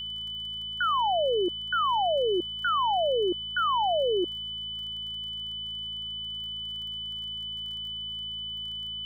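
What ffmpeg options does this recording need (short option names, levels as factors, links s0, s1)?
-af "adeclick=t=4,bandreject=f=54.7:t=h:w=4,bandreject=f=109.4:t=h:w=4,bandreject=f=164.1:t=h:w=4,bandreject=f=218.8:t=h:w=4,bandreject=f=3000:w=30,afftdn=nr=30:nf=-36"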